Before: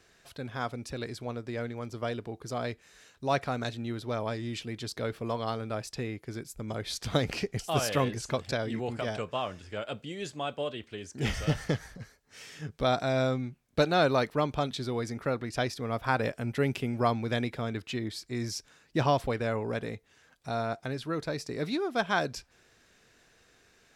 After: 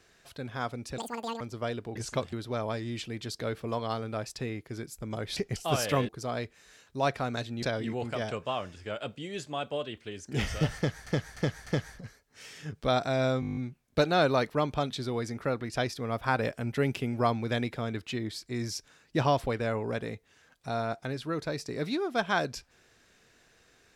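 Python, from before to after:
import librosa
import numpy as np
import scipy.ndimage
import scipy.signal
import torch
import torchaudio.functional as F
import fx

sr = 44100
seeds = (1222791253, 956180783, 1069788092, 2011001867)

y = fx.edit(x, sr, fx.speed_span(start_s=0.98, length_s=0.83, speed=1.95),
    fx.swap(start_s=2.36, length_s=1.54, other_s=8.12, other_length_s=0.37),
    fx.cut(start_s=6.94, length_s=0.46),
    fx.repeat(start_s=11.63, length_s=0.3, count=4),
    fx.stutter(start_s=13.37, slice_s=0.02, count=9), tone=tone)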